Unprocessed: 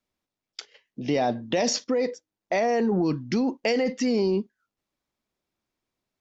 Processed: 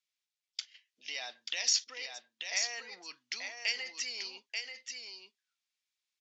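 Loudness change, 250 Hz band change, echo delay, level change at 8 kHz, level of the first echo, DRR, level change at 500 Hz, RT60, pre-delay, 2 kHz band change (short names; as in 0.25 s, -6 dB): -10.0 dB, -40.0 dB, 0.886 s, n/a, -5.5 dB, none, -28.5 dB, none, none, -3.0 dB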